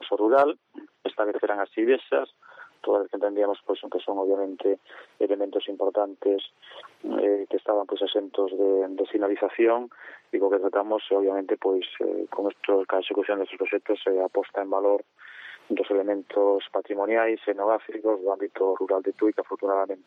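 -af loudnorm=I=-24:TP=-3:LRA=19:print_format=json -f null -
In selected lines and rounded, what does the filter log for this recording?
"input_i" : "-25.8",
"input_tp" : "-8.1",
"input_lra" : "2.1",
"input_thresh" : "-36.1",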